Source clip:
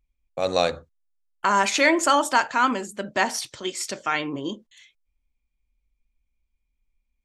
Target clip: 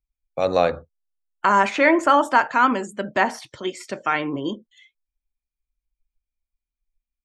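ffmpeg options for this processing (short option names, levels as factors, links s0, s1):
-filter_complex "[0:a]afftdn=nr=17:nf=-47,acrossover=split=640|2500[s0][s1][s2];[s2]acompressor=threshold=0.00708:ratio=12[s3];[s0][s1][s3]amix=inputs=3:normalize=0,volume=1.5"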